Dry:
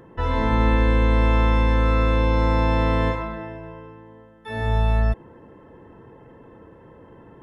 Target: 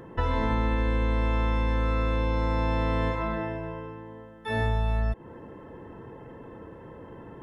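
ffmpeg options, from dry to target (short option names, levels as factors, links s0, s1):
-af "acompressor=threshold=0.0562:ratio=6,volume=1.33"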